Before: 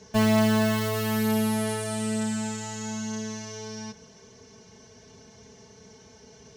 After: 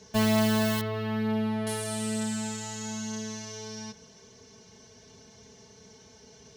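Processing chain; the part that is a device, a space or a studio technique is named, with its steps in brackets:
0:00.81–0:01.67: high-frequency loss of the air 350 metres
presence and air boost (parametric band 3,800 Hz +3.5 dB 0.82 octaves; high-shelf EQ 9,400 Hz +6.5 dB)
level −3 dB

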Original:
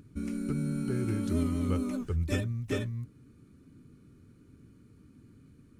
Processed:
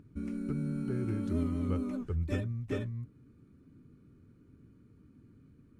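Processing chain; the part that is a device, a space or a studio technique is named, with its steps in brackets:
through cloth (high-shelf EQ 3,300 Hz −12 dB)
level −2.5 dB

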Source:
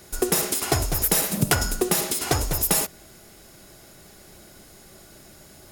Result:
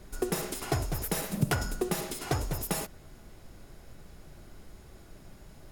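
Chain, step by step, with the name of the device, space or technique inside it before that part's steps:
car interior (parametric band 140 Hz +4 dB 0.77 octaves; high-shelf EQ 3,800 Hz −8 dB; brown noise bed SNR 14 dB)
level −7 dB

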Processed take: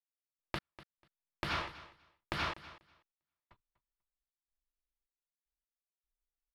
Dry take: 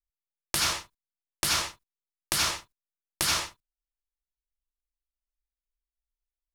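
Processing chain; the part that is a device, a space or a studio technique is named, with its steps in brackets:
high-frequency loss of the air 390 metres
trance gate with a delay (gate pattern "..x..xxxx.xxx" 77 BPM −60 dB; repeating echo 245 ms, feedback 16%, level −17 dB)
level −2.5 dB

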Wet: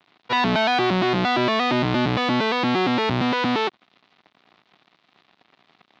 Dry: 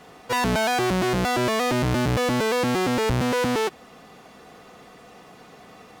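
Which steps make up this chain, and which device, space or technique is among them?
blown loudspeaker (dead-zone distortion −42.5 dBFS; loudspeaker in its box 160–4,200 Hz, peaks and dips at 490 Hz −9 dB, 1,600 Hz −3 dB, 3,800 Hz +4 dB)
level +4.5 dB

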